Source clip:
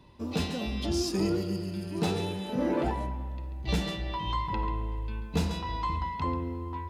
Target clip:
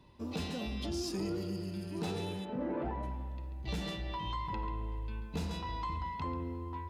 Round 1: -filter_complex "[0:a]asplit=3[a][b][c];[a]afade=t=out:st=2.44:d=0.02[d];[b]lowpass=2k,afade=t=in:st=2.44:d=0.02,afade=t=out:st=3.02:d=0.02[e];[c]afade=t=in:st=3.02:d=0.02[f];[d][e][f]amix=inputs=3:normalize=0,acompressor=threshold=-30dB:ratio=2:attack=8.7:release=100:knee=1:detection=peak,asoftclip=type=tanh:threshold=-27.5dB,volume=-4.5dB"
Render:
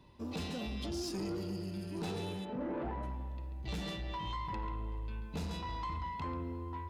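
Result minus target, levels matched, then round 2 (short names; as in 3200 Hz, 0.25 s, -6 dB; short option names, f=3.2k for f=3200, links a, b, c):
soft clip: distortion +12 dB
-filter_complex "[0:a]asplit=3[a][b][c];[a]afade=t=out:st=2.44:d=0.02[d];[b]lowpass=2k,afade=t=in:st=2.44:d=0.02,afade=t=out:st=3.02:d=0.02[e];[c]afade=t=in:st=3.02:d=0.02[f];[d][e][f]amix=inputs=3:normalize=0,acompressor=threshold=-30dB:ratio=2:attack=8.7:release=100:knee=1:detection=peak,asoftclip=type=tanh:threshold=-19.5dB,volume=-4.5dB"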